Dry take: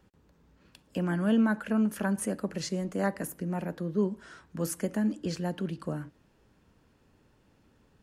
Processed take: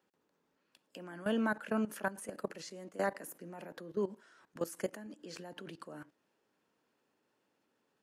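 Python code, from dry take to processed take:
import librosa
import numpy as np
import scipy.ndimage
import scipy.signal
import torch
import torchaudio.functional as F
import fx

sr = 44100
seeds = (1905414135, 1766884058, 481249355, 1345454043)

y = scipy.signal.sosfilt(scipy.signal.butter(2, 330.0, 'highpass', fs=sr, output='sos'), x)
y = fx.level_steps(y, sr, step_db=16)
y = F.gain(torch.from_numpy(y), 1.0).numpy()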